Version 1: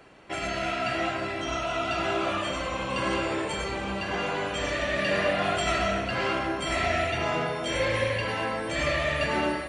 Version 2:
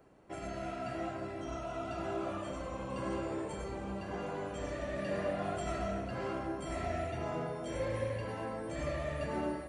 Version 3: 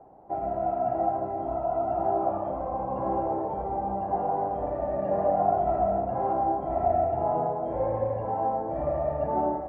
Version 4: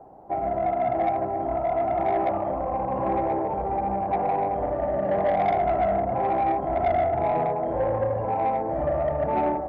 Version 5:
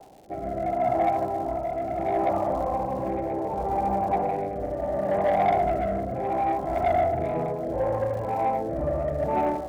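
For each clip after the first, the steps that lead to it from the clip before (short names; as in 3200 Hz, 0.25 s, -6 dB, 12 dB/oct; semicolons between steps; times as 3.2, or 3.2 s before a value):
bell 3000 Hz -14.5 dB 2.5 oct; gain -6 dB
synth low-pass 790 Hz, resonance Q 7.2; gain +3.5 dB
soft clip -21 dBFS, distortion -16 dB; gain +4.5 dB
crackle 240/s -40 dBFS; rotary speaker horn 0.7 Hz; gain +1.5 dB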